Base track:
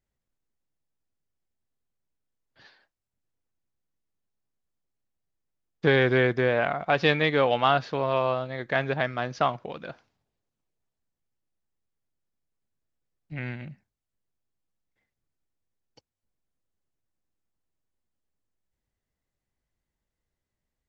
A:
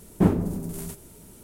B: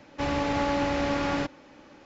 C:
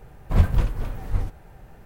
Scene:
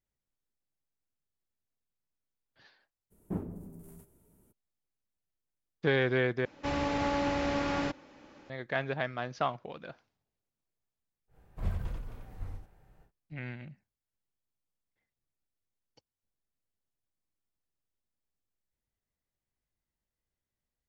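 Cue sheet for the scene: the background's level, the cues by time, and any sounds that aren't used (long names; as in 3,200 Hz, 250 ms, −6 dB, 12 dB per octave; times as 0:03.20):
base track −6.5 dB
0:03.10: mix in A −16 dB, fades 0.02 s + parametric band 4,600 Hz −12 dB 2.3 octaves
0:06.45: overwrite with B −4 dB
0:11.27: mix in C −17 dB, fades 0.10 s + loudspeakers that aren't time-aligned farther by 11 metres −9 dB, 31 metres −4 dB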